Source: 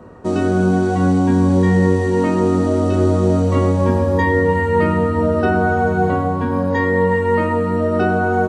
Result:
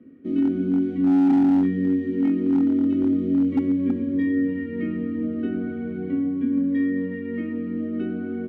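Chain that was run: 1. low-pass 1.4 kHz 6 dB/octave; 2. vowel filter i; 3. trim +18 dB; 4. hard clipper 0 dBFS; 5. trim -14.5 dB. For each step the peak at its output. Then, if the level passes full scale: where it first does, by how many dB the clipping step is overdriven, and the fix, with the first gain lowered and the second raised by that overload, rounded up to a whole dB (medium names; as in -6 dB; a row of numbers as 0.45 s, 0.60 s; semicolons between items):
-4.0 dBFS, -12.0 dBFS, +6.0 dBFS, 0.0 dBFS, -14.5 dBFS; step 3, 6.0 dB; step 3 +12 dB, step 5 -8.5 dB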